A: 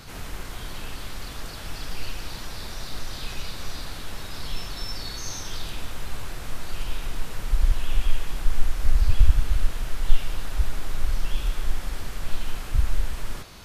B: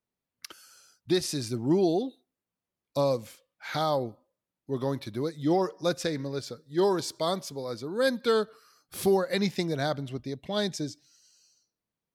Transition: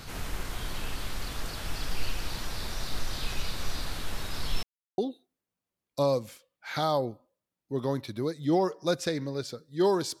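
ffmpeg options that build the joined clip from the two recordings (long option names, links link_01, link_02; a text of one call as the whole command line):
ffmpeg -i cue0.wav -i cue1.wav -filter_complex "[0:a]apad=whole_dur=10.2,atrim=end=10.2,asplit=2[link_01][link_02];[link_01]atrim=end=4.63,asetpts=PTS-STARTPTS,afade=type=out:start_time=4.626:duration=0.004:curve=hsin[link_03];[link_02]atrim=start=4.63:end=4.98,asetpts=PTS-STARTPTS,volume=0[link_04];[1:a]atrim=start=1.96:end=7.18,asetpts=PTS-STARTPTS,afade=type=in:duration=0.004:curve=hsin[link_05];[link_03][link_04][link_05]concat=n=3:v=0:a=1" out.wav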